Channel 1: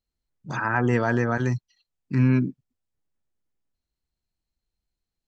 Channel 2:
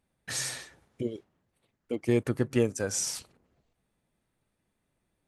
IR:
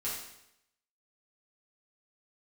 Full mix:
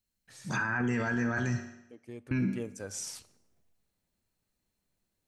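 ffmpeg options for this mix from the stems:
-filter_complex "[0:a]equalizer=frequency=100:width_type=o:width=0.33:gain=6,equalizer=frequency=200:width_type=o:width=0.33:gain=11,equalizer=frequency=1600:width_type=o:width=0.33:gain=8,aexciter=amount=2.5:drive=3.2:freq=2200,volume=-6.5dB,asplit=3[link_01][link_02][link_03];[link_01]atrim=end=1.68,asetpts=PTS-STARTPTS,afade=type=out:start_time=1.676:duration=0.004:curve=hsin[link_04];[link_02]atrim=start=1.68:end=2.31,asetpts=PTS-STARTPTS,volume=0[link_05];[link_03]atrim=start=2.31,asetpts=PTS-STARTPTS,afade=type=in:duration=0.004:curve=hsin[link_06];[link_04][link_05][link_06]concat=n=3:v=0:a=1,asplit=2[link_07][link_08];[link_08]volume=-7.5dB[link_09];[1:a]volume=-8dB,afade=type=in:start_time=2.36:duration=0.69:silence=0.237137,asplit=2[link_10][link_11];[link_11]volume=-21dB[link_12];[2:a]atrim=start_sample=2205[link_13];[link_09][link_12]amix=inputs=2:normalize=0[link_14];[link_14][link_13]afir=irnorm=-1:irlink=0[link_15];[link_07][link_10][link_15]amix=inputs=3:normalize=0,alimiter=limit=-22.5dB:level=0:latency=1:release=11"

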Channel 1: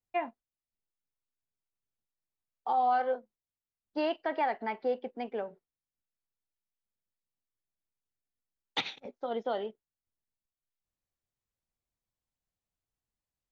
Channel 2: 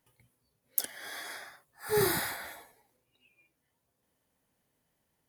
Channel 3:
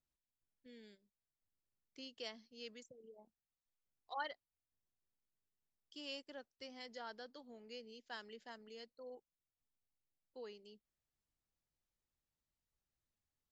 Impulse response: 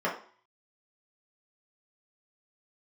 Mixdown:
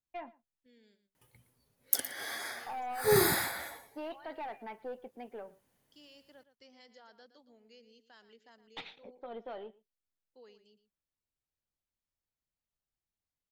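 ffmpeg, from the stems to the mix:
-filter_complex "[0:a]aeval=exprs='(tanh(22.4*val(0)+0.2)-tanh(0.2))/22.4':channel_layout=same,lowpass=3900,volume=-8dB,asplit=2[link_01][link_02];[link_02]volume=-22dB[link_03];[1:a]adelay=1150,volume=2dB,asplit=2[link_04][link_05];[link_05]volume=-14.5dB[link_06];[2:a]alimiter=level_in=16.5dB:limit=-24dB:level=0:latency=1,volume=-16.5dB,volume=-6dB,asplit=2[link_07][link_08];[link_08]volume=-13dB[link_09];[link_03][link_06][link_09]amix=inputs=3:normalize=0,aecho=0:1:116:1[link_10];[link_01][link_04][link_07][link_10]amix=inputs=4:normalize=0"

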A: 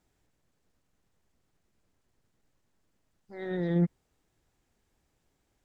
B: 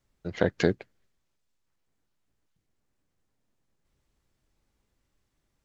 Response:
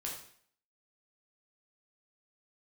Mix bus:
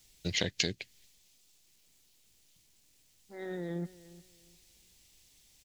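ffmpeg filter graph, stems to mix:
-filter_complex "[0:a]highpass=180,acompressor=threshold=-33dB:ratio=3,volume=-2.5dB,asplit=2[link_01][link_02];[link_02]volume=-18.5dB[link_03];[1:a]lowshelf=frequency=260:gain=9.5,aexciter=amount=11.5:drive=6.7:freq=2100,volume=-4.5dB[link_04];[link_03]aecho=0:1:355|710|1065|1420:1|0.26|0.0676|0.0176[link_05];[link_01][link_04][link_05]amix=inputs=3:normalize=0,acompressor=threshold=-29dB:ratio=4"

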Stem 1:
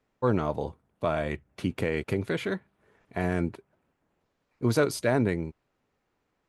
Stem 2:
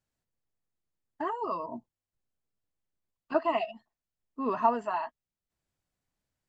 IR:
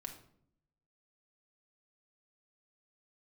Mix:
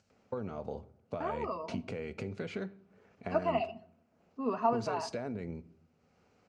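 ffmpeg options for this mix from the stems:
-filter_complex "[0:a]alimiter=limit=-19dB:level=0:latency=1:release=22,acompressor=threshold=-34dB:ratio=10,adelay=100,volume=-1.5dB,asplit=2[link_01][link_02];[link_02]volume=-5dB[link_03];[1:a]volume=-4dB,asplit=2[link_04][link_05];[link_05]volume=-4dB[link_06];[2:a]atrim=start_sample=2205[link_07];[link_03][link_06]amix=inputs=2:normalize=0[link_08];[link_08][link_07]afir=irnorm=-1:irlink=0[link_09];[link_01][link_04][link_09]amix=inputs=3:normalize=0,lowshelf=frequency=200:gain=6,acompressor=mode=upward:threshold=-53dB:ratio=2.5,highpass=110,equalizer=frequency=140:width_type=q:width=4:gain=-9,equalizer=frequency=310:width_type=q:width=4:gain=-9,equalizer=frequency=1000:width_type=q:width=4:gain=-7,equalizer=frequency=1800:width_type=q:width=4:gain=-8,equalizer=frequency=3500:width_type=q:width=4:gain=-8,lowpass=frequency=6500:width=0.5412,lowpass=frequency=6500:width=1.3066"

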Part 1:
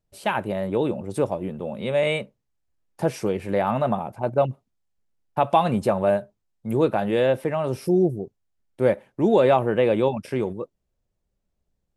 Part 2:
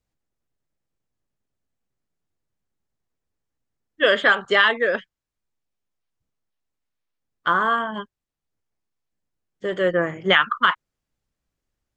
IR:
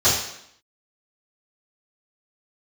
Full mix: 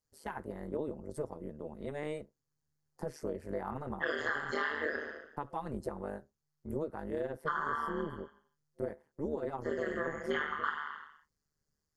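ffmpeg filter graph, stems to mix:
-filter_complex "[0:a]alimiter=limit=-12dB:level=0:latency=1:release=460,volume=-9.5dB,asplit=2[link_01][link_02];[1:a]tiltshelf=frequency=970:gain=-5,volume=-6dB,asplit=2[link_03][link_04];[link_04]volume=-17dB[link_05];[link_02]apad=whole_len=527495[link_06];[link_03][link_06]sidechaincompress=threshold=-52dB:ratio=6:attack=7.4:release=237[link_07];[2:a]atrim=start_sample=2205[link_08];[link_05][link_08]afir=irnorm=-1:irlink=0[link_09];[link_01][link_07][link_09]amix=inputs=3:normalize=0,superequalizer=7b=1.58:8b=0.316:12b=0.251:13b=0.316,tremolo=f=150:d=0.889,acompressor=threshold=-31dB:ratio=6"

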